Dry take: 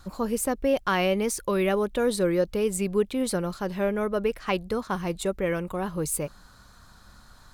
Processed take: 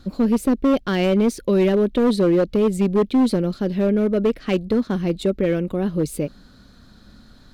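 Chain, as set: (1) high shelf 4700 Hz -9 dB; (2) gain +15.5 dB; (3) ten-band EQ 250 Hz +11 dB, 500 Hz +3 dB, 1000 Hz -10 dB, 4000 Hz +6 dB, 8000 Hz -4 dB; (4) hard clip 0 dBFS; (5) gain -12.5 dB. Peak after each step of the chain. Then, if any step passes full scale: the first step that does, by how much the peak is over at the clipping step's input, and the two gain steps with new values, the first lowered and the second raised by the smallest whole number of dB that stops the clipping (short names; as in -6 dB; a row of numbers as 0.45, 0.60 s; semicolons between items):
-12.5, +3.0, +7.0, 0.0, -12.5 dBFS; step 2, 7.0 dB; step 2 +8.5 dB, step 5 -5.5 dB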